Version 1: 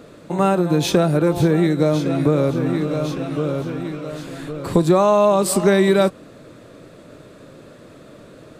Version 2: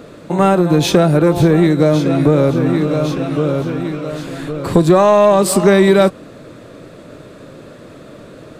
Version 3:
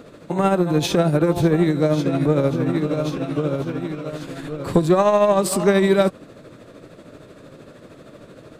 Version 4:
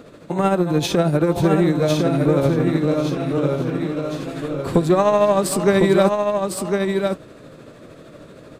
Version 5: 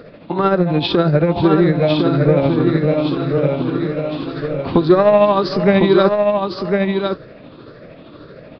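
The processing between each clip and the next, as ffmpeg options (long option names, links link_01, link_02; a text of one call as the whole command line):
ffmpeg -i in.wav -filter_complex "[0:a]asplit=2[link_01][link_02];[link_02]acontrast=63,volume=2.5dB[link_03];[link_01][link_03]amix=inputs=2:normalize=0,equalizer=frequency=11000:width=0.42:gain=-2.5,volume=-5.5dB" out.wav
ffmpeg -i in.wav -af "tremolo=f=13:d=0.48,volume=-4dB" out.wav
ffmpeg -i in.wav -af "aecho=1:1:1054:0.596" out.wav
ffmpeg -i in.wav -af "afftfilt=real='re*pow(10,8/40*sin(2*PI*(0.56*log(max(b,1)*sr/1024/100)/log(2)-(1.8)*(pts-256)/sr)))':imag='im*pow(10,8/40*sin(2*PI*(0.56*log(max(b,1)*sr/1024/100)/log(2)-(1.8)*(pts-256)/sr)))':win_size=1024:overlap=0.75,aresample=11025,aresample=44100,volume=2.5dB" out.wav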